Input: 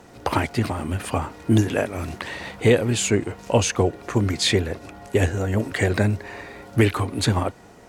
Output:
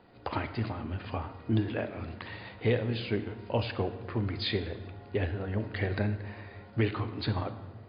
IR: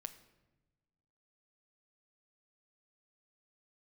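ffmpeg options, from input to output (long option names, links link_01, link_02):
-filter_complex "[1:a]atrim=start_sample=2205,asetrate=30870,aresample=44100[link_01];[0:a][link_01]afir=irnorm=-1:irlink=0,volume=-8dB" -ar 11025 -c:a libmp3lame -b:a 64k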